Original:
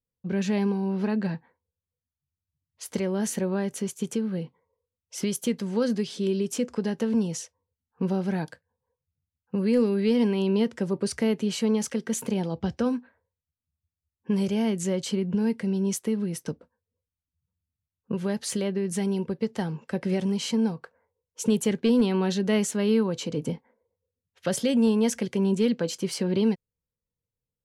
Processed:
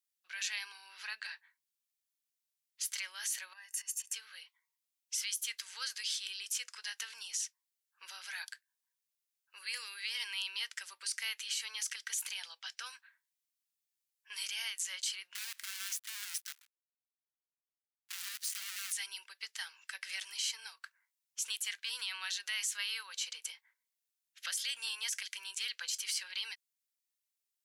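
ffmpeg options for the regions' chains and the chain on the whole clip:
-filter_complex "[0:a]asettb=1/sr,asplit=3[a][b][c];[a]atrim=end=3.534[d];[b]atrim=start=3.53:end=4.14,asetpts=PTS-STARTPTS,afade=t=in:d=0.004:c=qsin,afade=t=out:st=0.606:d=0.004:c=qsin,equalizer=f=3.7k:t=o:w=0.46:g=-12.5,aecho=1:1:1.1:0.87,atrim=end_sample=26901,acompressor=threshold=-35dB:ratio=10:attack=3.2:release=140:knee=1:detection=peak[e];[c]atrim=start=4.136[f];[d][e]acrossfade=d=0.004:c1=hsin:c2=qsin[g];[g][f]acrossfade=d=0.004:c1=qsin:c2=hsin,asettb=1/sr,asplit=3[h][i][j];[h]atrim=end=15.354[k];[i]atrim=start=15.35:end=18.93,asetpts=PTS-STARTPTS,afade=t=in:d=0.004:c=qsin,afade=t=out:st=3.576:d=0.004:c=qsin,asubboost=boost=8.5:cutoff=160,acrossover=split=190|1800|4500[l][m][n][o];[l]acompressor=threshold=-36dB:ratio=3[p];[m]acompressor=threshold=-39dB:ratio=3[q];[n]acompressor=threshold=-56dB:ratio=3[r];[o]acompressor=threshold=-43dB:ratio=3[s];[p][q][r][s]amix=inputs=4:normalize=0,acrusher=bits=7:dc=4:mix=0:aa=0.000001[t];[j]atrim=start=18.926[u];[k][t]acrossfade=d=0.004:c1=hsin:c2=qsin[v];[v][u]acrossfade=d=0.004:c1=qsin:c2=hsin,highpass=f=1.5k:w=0.5412,highpass=f=1.5k:w=1.3066,highshelf=f=2.5k:g=10.5,alimiter=limit=-23dB:level=0:latency=1:release=57,volume=-2.5dB"

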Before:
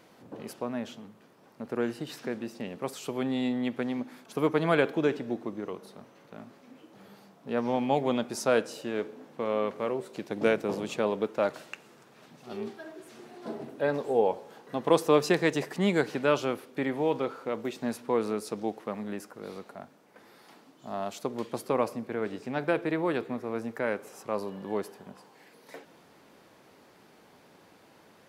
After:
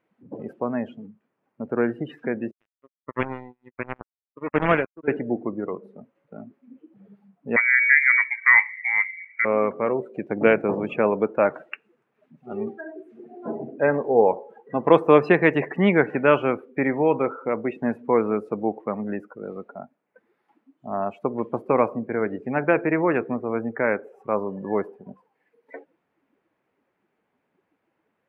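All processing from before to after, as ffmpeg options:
-filter_complex "[0:a]asettb=1/sr,asplit=3[a][b][c];[a]atrim=end=2.514[d];[b]atrim=start=2.51:end=5.08,asetpts=PTS-STARTPTS,afade=t=in:d=0.004:c=qsin,afade=t=out:st=2.566:d=0.004:c=qsin,highshelf=f=6.2k:g=-8,acrusher=bits=3:mix=0:aa=0.5,aeval=exprs='val(0)*pow(10,-21*(0.5-0.5*cos(2*PI*1.4*n/s))/20)':c=same[e];[c]atrim=start=5.076[f];[d][e]acrossfade=d=0.004:c1=hsin:c2=qsin[g];[g][f]acrossfade=d=0.004:c1=qsin:c2=hsin,asettb=1/sr,asplit=3[h][i][j];[h]atrim=end=7.564[k];[i]atrim=start=7.56:end=9.45,asetpts=PTS-STARTPTS,afade=t=in:d=0.004:c=qsin,afade=t=out:st=1.886:d=0.004:c=qsin,volume=15.5dB,asoftclip=hard,volume=-15.5dB,lowpass=f=2.1k:t=q:w=0.5098,lowpass=f=2.1k:t=q:w=0.6013,lowpass=f=2.1k:t=q:w=0.9,lowpass=f=2.1k:t=q:w=2.563,afreqshift=-2500[l];[j]atrim=start=9.446[m];[k][l]acrossfade=d=0.004:c1=hsin:c2=qsin[n];[n][m]acrossfade=d=0.004:c1=qsin:c2=hsin,highshelf=f=3.3k:t=q:w=1.5:g=-11.5,afftdn=nr=25:nf=-41,volume=7dB"

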